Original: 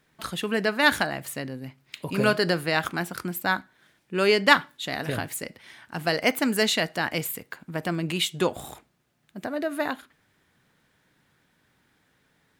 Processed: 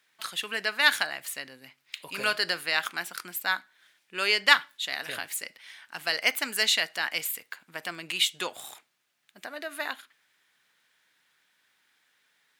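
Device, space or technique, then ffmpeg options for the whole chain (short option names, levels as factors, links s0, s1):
filter by subtraction: -filter_complex "[0:a]asplit=2[s0][s1];[s1]lowpass=2700,volume=-1[s2];[s0][s2]amix=inputs=2:normalize=0"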